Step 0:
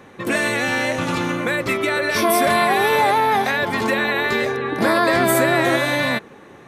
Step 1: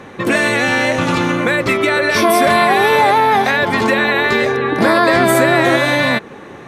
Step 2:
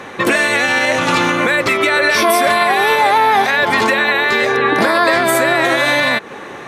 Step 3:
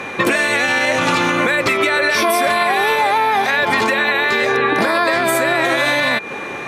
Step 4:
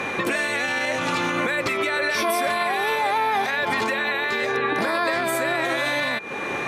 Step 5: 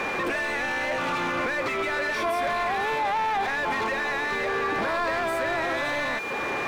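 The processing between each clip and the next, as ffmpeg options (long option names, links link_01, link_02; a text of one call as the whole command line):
ffmpeg -i in.wav -filter_complex "[0:a]highshelf=frequency=11000:gain=-10.5,asplit=2[link_01][link_02];[link_02]acompressor=threshold=-25dB:ratio=6,volume=1dB[link_03];[link_01][link_03]amix=inputs=2:normalize=0,volume=2.5dB" out.wav
ffmpeg -i in.wav -af "lowshelf=frequency=350:gain=-11.5,alimiter=limit=-11.5dB:level=0:latency=1:release=168,volume=7.5dB" out.wav
ffmpeg -i in.wav -af "acompressor=threshold=-15dB:ratio=6,aeval=exprs='val(0)+0.0251*sin(2*PI*2400*n/s)':channel_layout=same,volume=2.5dB" out.wav
ffmpeg -i in.wav -af "alimiter=limit=-14dB:level=0:latency=1:release=373" out.wav
ffmpeg -i in.wav -filter_complex "[0:a]aeval=exprs='val(0)+0.5*0.0299*sgn(val(0))':channel_layout=same,asplit=2[link_01][link_02];[link_02]highpass=frequency=720:poles=1,volume=17dB,asoftclip=type=tanh:threshold=-13dB[link_03];[link_01][link_03]amix=inputs=2:normalize=0,lowpass=frequency=1400:poles=1,volume=-6dB,volume=-5.5dB" out.wav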